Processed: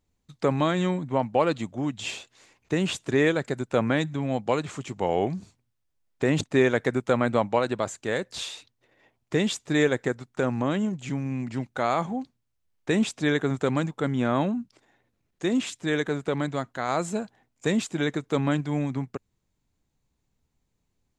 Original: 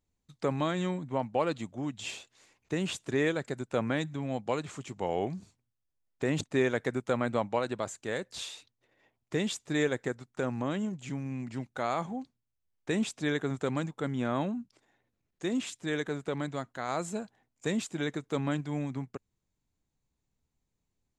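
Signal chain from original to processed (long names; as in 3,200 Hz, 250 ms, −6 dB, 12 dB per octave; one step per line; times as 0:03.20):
high-shelf EQ 8,000 Hz −5 dB
level +6.5 dB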